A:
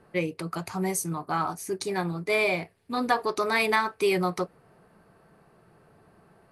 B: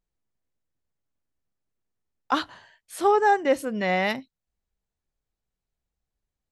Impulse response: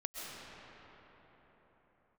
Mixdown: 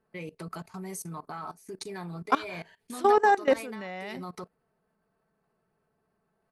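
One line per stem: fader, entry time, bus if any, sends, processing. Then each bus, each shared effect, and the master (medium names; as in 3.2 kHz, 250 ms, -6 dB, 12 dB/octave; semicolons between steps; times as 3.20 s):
-3.0 dB, 0.00 s, no send, comb 4.6 ms, depth 39%; compression 16:1, threshold -25 dBFS, peak gain reduction 11 dB
+2.0 dB, 0.00 s, no send, none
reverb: none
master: level held to a coarse grid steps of 19 dB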